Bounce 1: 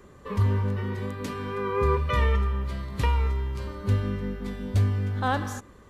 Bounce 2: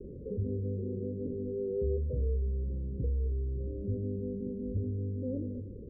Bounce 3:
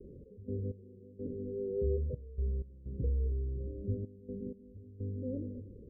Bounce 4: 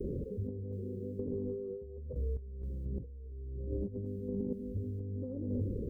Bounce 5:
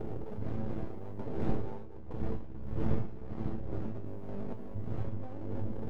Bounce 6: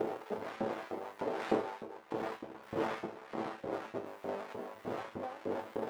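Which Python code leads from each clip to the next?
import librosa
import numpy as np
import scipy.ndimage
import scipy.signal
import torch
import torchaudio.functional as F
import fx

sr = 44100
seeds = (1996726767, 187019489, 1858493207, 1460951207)

y1 = scipy.signal.sosfilt(scipy.signal.butter(16, 530.0, 'lowpass', fs=sr, output='sos'), x)
y1 = fx.hum_notches(y1, sr, base_hz=50, count=4)
y1 = fx.env_flatten(y1, sr, amount_pct=50)
y1 = y1 * librosa.db_to_amplitude(-8.0)
y2 = fx.step_gate(y1, sr, bpm=63, pattern='x.x..xxxx.x.xxxx', floor_db=-12.0, edge_ms=4.5)
y2 = fx.upward_expand(y2, sr, threshold_db=-41.0, expansion=1.5)
y3 = fx.over_compress(y2, sr, threshold_db=-45.0, ratio=-1.0)
y3 = y3 * librosa.db_to_amplitude(6.5)
y4 = fx.dmg_wind(y3, sr, seeds[0], corner_hz=220.0, level_db=-37.0)
y4 = np.maximum(y4, 0.0)
y4 = fx.comb_fb(y4, sr, f0_hz=110.0, decay_s=0.31, harmonics='all', damping=0.0, mix_pct=80)
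y4 = y4 * librosa.db_to_amplitude(9.5)
y5 = fx.filter_lfo_highpass(y4, sr, shape='saw_up', hz=3.3, low_hz=340.0, high_hz=1900.0, q=0.79)
y5 = y5 * librosa.db_to_amplitude(11.0)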